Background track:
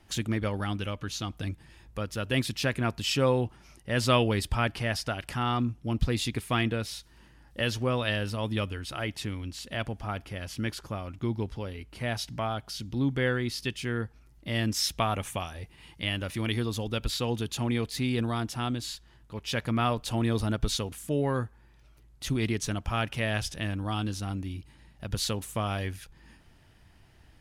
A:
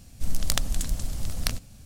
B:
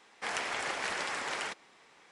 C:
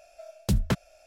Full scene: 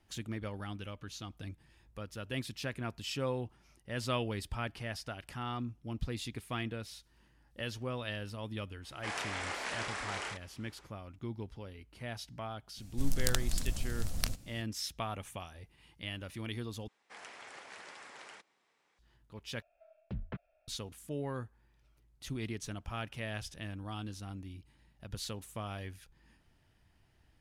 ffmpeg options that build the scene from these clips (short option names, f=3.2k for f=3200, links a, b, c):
-filter_complex "[2:a]asplit=2[a][b];[0:a]volume=-10.5dB[c];[a]asplit=2[d][e];[e]adelay=31,volume=-3dB[f];[d][f]amix=inputs=2:normalize=0[g];[b]highpass=56[h];[3:a]lowpass=f=2.7k:w=0.5412,lowpass=f=2.7k:w=1.3066[i];[c]asplit=3[j][k][l];[j]atrim=end=16.884[m];[h]atrim=end=2.11,asetpts=PTS-STARTPTS,volume=-15.5dB[n];[k]atrim=start=18.986:end=19.624[o];[i]atrim=end=1.06,asetpts=PTS-STARTPTS,volume=-16dB[p];[l]atrim=start=20.676[q];[g]atrim=end=2.11,asetpts=PTS-STARTPTS,volume=-5.5dB,afade=t=in:d=0.05,afade=t=out:st=2.06:d=0.05,adelay=8810[r];[1:a]atrim=end=1.85,asetpts=PTS-STARTPTS,volume=-6dB,afade=t=in:d=0.004:c=hsin,afade=t=out:st=1.846:d=0.004:c=hsin,adelay=12770[s];[m][n]acrossfade=d=0.004:c1=hsin:c2=hsin[t];[t][o]acrossfade=d=0.004:c1=hsin:c2=hsin[u];[u][p]acrossfade=d=0.004:c1=hsin:c2=hsin[v];[v][q]acrossfade=d=0.004:c1=hsin:c2=hsin[w];[w][r][s]amix=inputs=3:normalize=0"